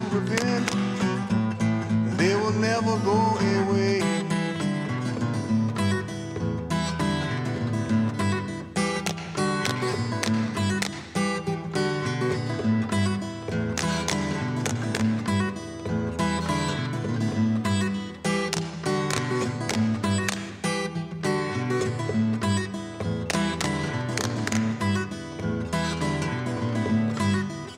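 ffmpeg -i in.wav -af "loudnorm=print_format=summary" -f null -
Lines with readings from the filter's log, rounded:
Input Integrated:    -26.2 LUFS
Input True Peak:     -10.5 dBTP
Input LRA:             3.2 LU
Input Threshold:     -36.2 LUFS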